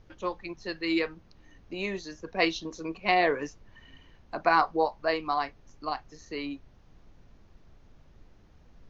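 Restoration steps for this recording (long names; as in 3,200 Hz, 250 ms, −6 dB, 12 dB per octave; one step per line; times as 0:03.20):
noise reduction from a noise print 17 dB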